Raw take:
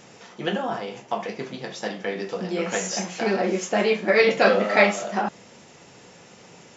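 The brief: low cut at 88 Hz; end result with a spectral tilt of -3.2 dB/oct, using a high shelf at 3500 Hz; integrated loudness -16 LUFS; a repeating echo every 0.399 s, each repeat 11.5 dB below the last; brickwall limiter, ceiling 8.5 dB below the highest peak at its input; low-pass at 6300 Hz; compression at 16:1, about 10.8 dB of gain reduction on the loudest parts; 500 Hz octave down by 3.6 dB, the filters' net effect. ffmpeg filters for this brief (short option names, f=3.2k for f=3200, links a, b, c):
-af "highpass=88,lowpass=6.3k,equalizer=f=500:t=o:g=-4.5,highshelf=f=3.5k:g=6.5,acompressor=threshold=-23dB:ratio=16,alimiter=limit=-19.5dB:level=0:latency=1,aecho=1:1:399|798|1197:0.266|0.0718|0.0194,volume=14.5dB"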